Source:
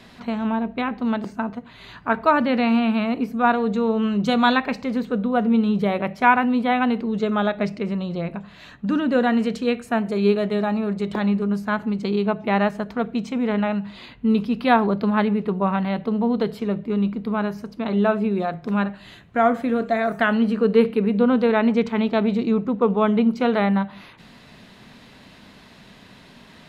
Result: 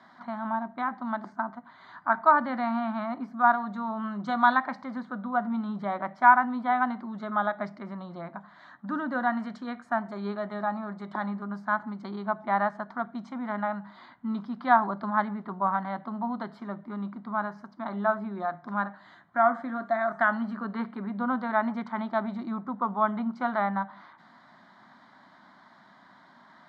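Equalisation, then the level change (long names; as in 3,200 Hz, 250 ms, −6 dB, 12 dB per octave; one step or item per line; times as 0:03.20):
band-pass filter 360–2,600 Hz
phaser with its sweep stopped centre 1,100 Hz, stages 4
0.0 dB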